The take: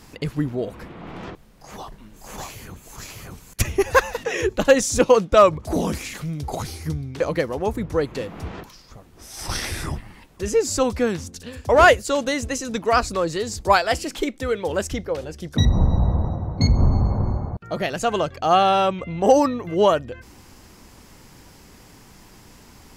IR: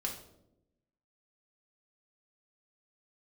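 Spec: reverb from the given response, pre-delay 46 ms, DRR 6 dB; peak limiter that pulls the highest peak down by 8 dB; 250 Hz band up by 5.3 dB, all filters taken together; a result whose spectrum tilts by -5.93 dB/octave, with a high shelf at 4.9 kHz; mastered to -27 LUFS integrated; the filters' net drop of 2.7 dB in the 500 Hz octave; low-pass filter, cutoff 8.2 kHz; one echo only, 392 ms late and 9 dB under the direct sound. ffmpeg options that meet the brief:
-filter_complex "[0:a]lowpass=8200,equalizer=f=250:t=o:g=8,equalizer=f=500:t=o:g=-5,highshelf=f=4900:g=-4.5,alimiter=limit=0.266:level=0:latency=1,aecho=1:1:392:0.355,asplit=2[s0][s1];[1:a]atrim=start_sample=2205,adelay=46[s2];[s1][s2]afir=irnorm=-1:irlink=0,volume=0.422[s3];[s0][s3]amix=inputs=2:normalize=0,volume=0.596"

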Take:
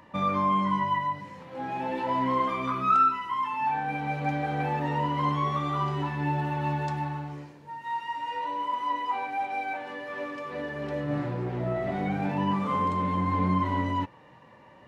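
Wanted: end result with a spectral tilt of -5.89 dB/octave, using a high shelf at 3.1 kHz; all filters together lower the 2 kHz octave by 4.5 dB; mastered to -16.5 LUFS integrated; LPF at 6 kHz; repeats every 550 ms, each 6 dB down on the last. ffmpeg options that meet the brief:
-af "lowpass=6000,equalizer=f=2000:t=o:g=-8.5,highshelf=f=3100:g=8.5,aecho=1:1:550|1100|1650|2200|2750|3300:0.501|0.251|0.125|0.0626|0.0313|0.0157,volume=3.98"

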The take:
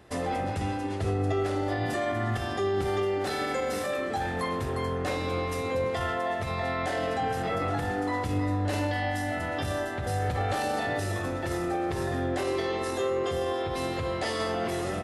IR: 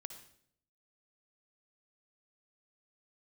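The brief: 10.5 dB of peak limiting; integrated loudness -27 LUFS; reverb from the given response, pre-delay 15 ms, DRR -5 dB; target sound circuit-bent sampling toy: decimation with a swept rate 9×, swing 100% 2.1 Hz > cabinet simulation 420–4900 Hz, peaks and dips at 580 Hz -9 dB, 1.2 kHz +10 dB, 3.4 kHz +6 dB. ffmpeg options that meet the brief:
-filter_complex "[0:a]alimiter=level_in=1.68:limit=0.0631:level=0:latency=1,volume=0.596,asplit=2[s0][s1];[1:a]atrim=start_sample=2205,adelay=15[s2];[s1][s2]afir=irnorm=-1:irlink=0,volume=2.82[s3];[s0][s3]amix=inputs=2:normalize=0,acrusher=samples=9:mix=1:aa=0.000001:lfo=1:lforange=9:lforate=2.1,highpass=420,equalizer=f=580:t=q:w=4:g=-9,equalizer=f=1200:t=q:w=4:g=10,equalizer=f=3400:t=q:w=4:g=6,lowpass=f=4900:w=0.5412,lowpass=f=4900:w=1.3066,volume=1.68"

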